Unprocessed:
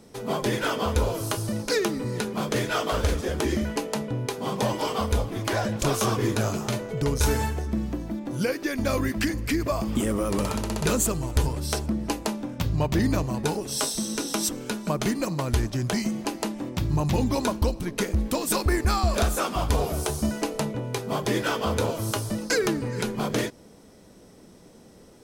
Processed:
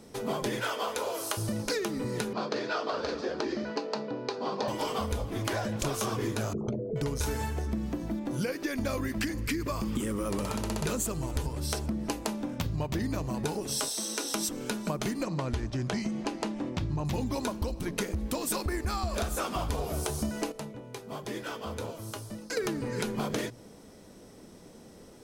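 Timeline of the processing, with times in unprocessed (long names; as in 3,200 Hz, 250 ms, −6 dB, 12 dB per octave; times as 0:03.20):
0:00.60–0:01.37: high-pass filter 490 Hz
0:02.33–0:04.68: loudspeaker in its box 280–4,900 Hz, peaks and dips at 2,100 Hz −7 dB, 3,200 Hz −8 dB, 4,500 Hz +6 dB
0:06.53–0:06.96: spectral envelope exaggerated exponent 3
0:09.42–0:10.26: parametric band 680 Hz −12 dB 0.39 octaves
0:13.88–0:14.34: high-pass filter 410 Hz
0:15.23–0:17.05: high-frequency loss of the air 72 metres
0:20.52–0:22.57: clip gain −11.5 dB
whole clip: mains-hum notches 60/120/180 Hz; downward compressor, threshold −28 dBFS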